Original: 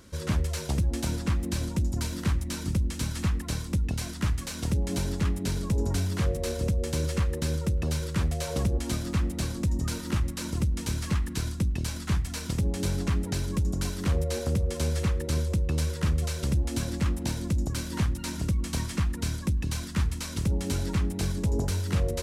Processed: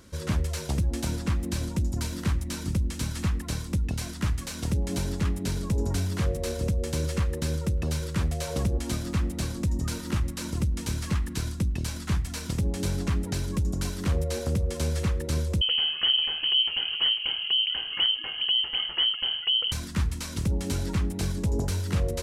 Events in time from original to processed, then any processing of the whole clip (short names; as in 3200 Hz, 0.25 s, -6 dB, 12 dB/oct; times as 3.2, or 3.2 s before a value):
15.61–19.72 inverted band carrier 3100 Hz